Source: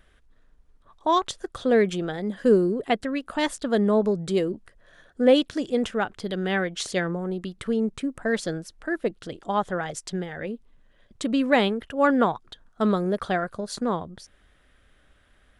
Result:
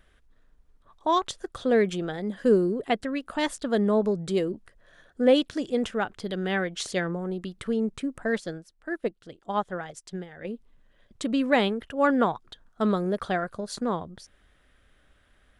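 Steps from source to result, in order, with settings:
0:08.38–0:10.45: expander for the loud parts 1.5 to 1, over −44 dBFS
level −2 dB

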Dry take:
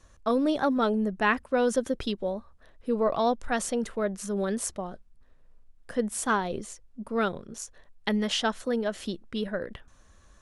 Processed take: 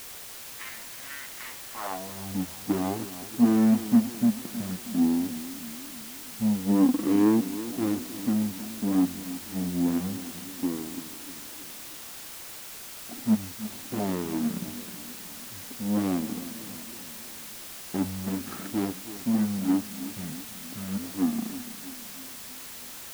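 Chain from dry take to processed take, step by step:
running median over 41 samples
change of speed 0.45×
high-pass filter sweep 2,000 Hz → 260 Hz, 0:01.55–0:02.34
background noise white −44 dBFS
feedback echo with a swinging delay time 319 ms, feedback 56%, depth 84 cents, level −14 dB
level +2 dB

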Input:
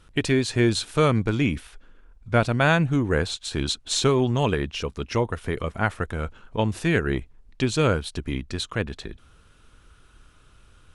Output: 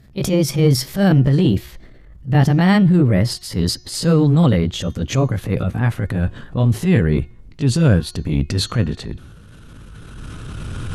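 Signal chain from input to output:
pitch glide at a constant tempo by +5 semitones ending unshifted
camcorder AGC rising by 11 dB per second
parametric band 140 Hz +14 dB 2.4 octaves
transient designer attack −9 dB, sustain +5 dB
hum removal 359.9 Hz, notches 19

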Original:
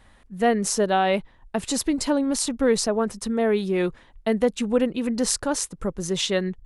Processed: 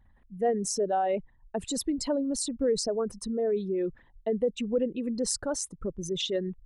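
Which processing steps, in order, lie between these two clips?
spectral envelope exaggerated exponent 2
level −6 dB

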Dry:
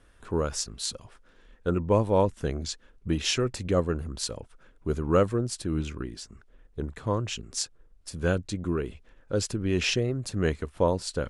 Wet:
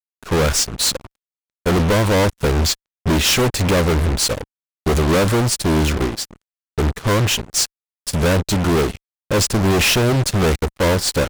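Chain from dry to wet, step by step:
fuzz pedal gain 50 dB, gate −44 dBFS
expander for the loud parts 2.5 to 1, over −34 dBFS

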